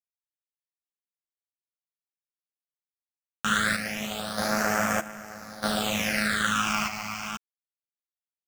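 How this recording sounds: a quantiser's noise floor 6-bit, dither none; phasing stages 8, 0.25 Hz, lowest notch 490–3900 Hz; random-step tremolo 1.6 Hz, depth 90%; a shimmering, thickened sound

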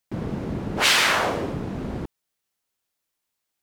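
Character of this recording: noise floor -81 dBFS; spectral tilt -3.0 dB/octave

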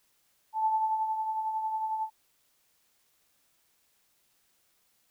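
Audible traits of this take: tremolo triangle 11 Hz, depth 50%; a quantiser's noise floor 12-bit, dither triangular

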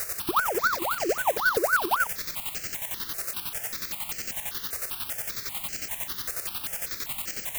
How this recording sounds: a quantiser's noise floor 6-bit, dither triangular; chopped level 11 Hz, depth 60%, duty 40%; notches that jump at a steady rate 5.1 Hz 890–3600 Hz

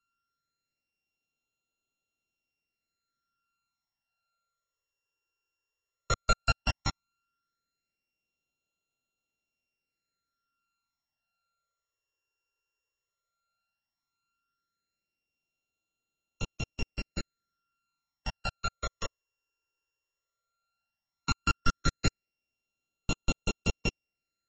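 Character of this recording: a buzz of ramps at a fixed pitch in blocks of 32 samples; phasing stages 12, 0.14 Hz, lowest notch 220–1700 Hz; AAC

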